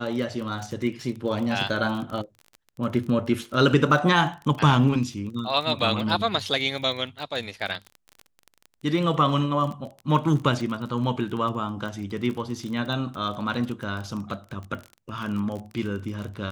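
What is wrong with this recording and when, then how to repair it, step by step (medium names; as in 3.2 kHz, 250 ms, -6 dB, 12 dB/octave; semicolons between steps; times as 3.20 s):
crackle 31 per s -31 dBFS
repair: de-click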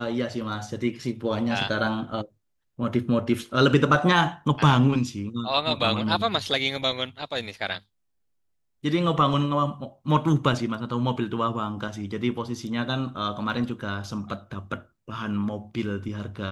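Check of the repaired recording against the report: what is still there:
nothing left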